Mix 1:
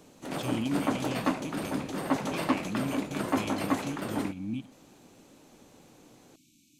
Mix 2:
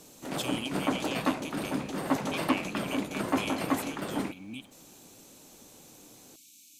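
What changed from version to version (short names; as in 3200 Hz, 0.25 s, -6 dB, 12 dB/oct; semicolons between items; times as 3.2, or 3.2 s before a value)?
speech: add tilt +4 dB/oct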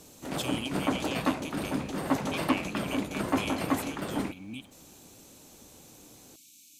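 master: add bell 62 Hz +10 dB 1.3 oct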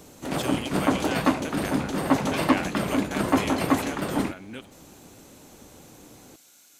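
speech: remove brick-wall FIR band-stop 350–2200 Hz; background +6.0 dB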